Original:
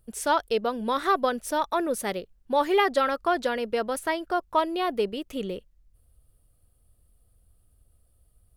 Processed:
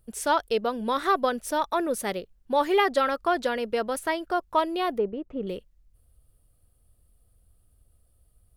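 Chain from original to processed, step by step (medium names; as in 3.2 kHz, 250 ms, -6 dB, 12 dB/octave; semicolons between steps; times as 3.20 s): 4.98–5.47 s: low-pass 1.1 kHz 12 dB/octave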